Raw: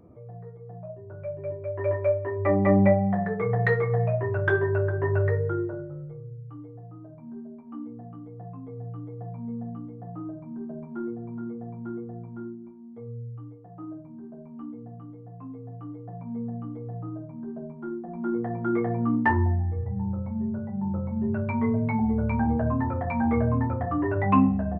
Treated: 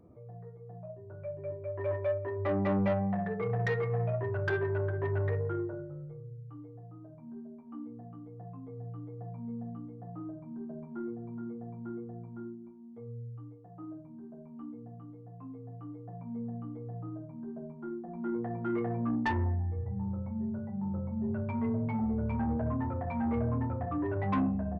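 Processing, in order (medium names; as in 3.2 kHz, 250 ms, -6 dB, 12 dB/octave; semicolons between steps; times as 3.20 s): treble shelf 2 kHz -2.5 dB, from 20.82 s -10 dB; saturation -18.5 dBFS, distortion -14 dB; trim -5 dB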